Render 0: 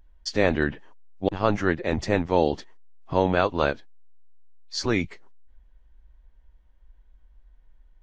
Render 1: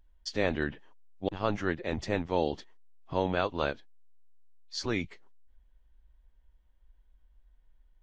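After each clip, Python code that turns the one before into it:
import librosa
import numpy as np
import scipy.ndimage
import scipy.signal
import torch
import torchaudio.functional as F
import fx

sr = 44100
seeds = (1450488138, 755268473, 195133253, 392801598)

y = fx.peak_eq(x, sr, hz=3300.0, db=4.0, octaves=0.65)
y = y * librosa.db_to_amplitude(-7.5)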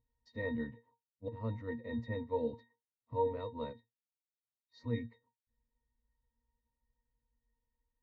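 y = fx.octave_resonator(x, sr, note='A#', decay_s=0.17)
y = y * librosa.db_to_amplitude(4.0)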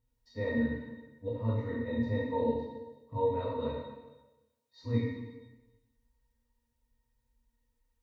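y = fx.rev_plate(x, sr, seeds[0], rt60_s=1.1, hf_ratio=1.0, predelay_ms=0, drr_db=-6.0)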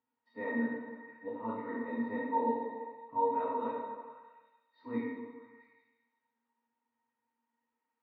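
y = fx.cabinet(x, sr, low_hz=230.0, low_slope=24, high_hz=2600.0, hz=(530.0, 850.0, 1300.0), db=(-8, 9, 5))
y = fx.echo_stepped(y, sr, ms=168, hz=540.0, octaves=0.7, feedback_pct=70, wet_db=-8.0)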